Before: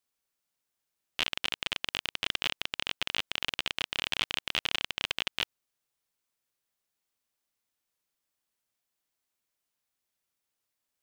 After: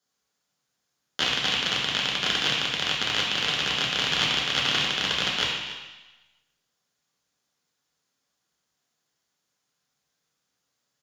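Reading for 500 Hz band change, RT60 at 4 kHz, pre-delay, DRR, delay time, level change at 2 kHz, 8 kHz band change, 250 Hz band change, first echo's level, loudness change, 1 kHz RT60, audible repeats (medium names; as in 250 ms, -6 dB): +10.0 dB, 1.2 s, 3 ms, -3.5 dB, 286 ms, +7.5 dB, +9.5 dB, +12.0 dB, -16.0 dB, +8.0 dB, 1.2 s, 1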